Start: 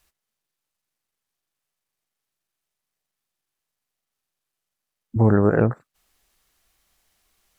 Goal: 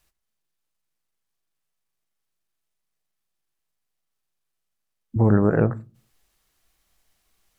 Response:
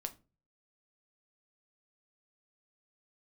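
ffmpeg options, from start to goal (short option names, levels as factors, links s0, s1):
-filter_complex "[0:a]asplit=2[s0][s1];[1:a]atrim=start_sample=2205,lowshelf=f=380:g=7.5[s2];[s1][s2]afir=irnorm=-1:irlink=0,volume=0.631[s3];[s0][s3]amix=inputs=2:normalize=0,volume=0.501"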